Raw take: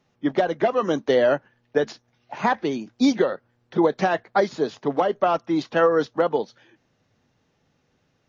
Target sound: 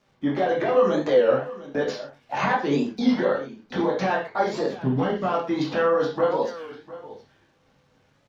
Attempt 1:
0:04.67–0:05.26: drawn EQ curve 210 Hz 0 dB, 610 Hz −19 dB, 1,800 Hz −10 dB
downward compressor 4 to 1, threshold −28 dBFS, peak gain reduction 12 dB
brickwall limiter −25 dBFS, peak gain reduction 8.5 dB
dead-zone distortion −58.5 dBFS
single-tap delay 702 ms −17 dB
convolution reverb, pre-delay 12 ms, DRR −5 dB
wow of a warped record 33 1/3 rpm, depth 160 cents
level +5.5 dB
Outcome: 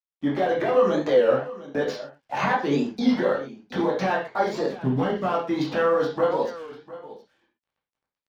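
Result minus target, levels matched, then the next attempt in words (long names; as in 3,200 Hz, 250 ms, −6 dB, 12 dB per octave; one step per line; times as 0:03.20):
dead-zone distortion: distortion +8 dB
0:04.67–0:05.26: drawn EQ curve 210 Hz 0 dB, 610 Hz −19 dB, 1,800 Hz −10 dB
downward compressor 4 to 1, threshold −28 dBFS, peak gain reduction 12 dB
brickwall limiter −25 dBFS, peak gain reduction 8.5 dB
dead-zone distortion −69 dBFS
single-tap delay 702 ms −17 dB
convolution reverb, pre-delay 12 ms, DRR −5 dB
wow of a warped record 33 1/3 rpm, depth 160 cents
level +5.5 dB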